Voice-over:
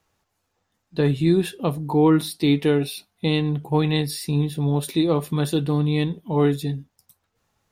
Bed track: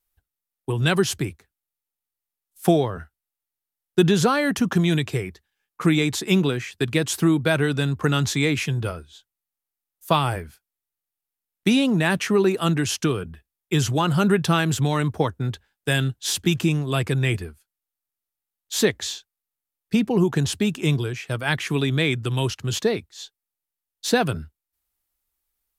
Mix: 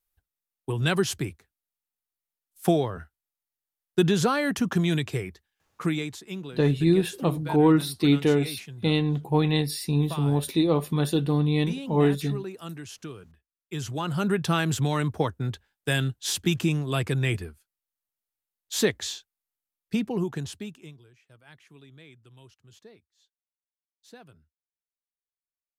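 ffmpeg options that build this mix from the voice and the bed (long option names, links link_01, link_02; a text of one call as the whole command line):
ffmpeg -i stem1.wav -i stem2.wav -filter_complex "[0:a]adelay=5600,volume=-2dB[link_01];[1:a]volume=9.5dB,afade=type=out:start_time=5.65:duration=0.57:silence=0.223872,afade=type=in:start_time=13.55:duration=1.12:silence=0.211349,afade=type=out:start_time=19.57:duration=1.37:silence=0.0530884[link_02];[link_01][link_02]amix=inputs=2:normalize=0" out.wav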